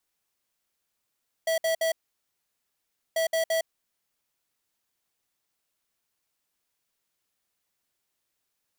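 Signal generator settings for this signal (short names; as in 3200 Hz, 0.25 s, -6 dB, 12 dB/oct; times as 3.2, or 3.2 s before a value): beep pattern square 652 Hz, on 0.11 s, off 0.06 s, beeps 3, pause 1.24 s, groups 2, -25 dBFS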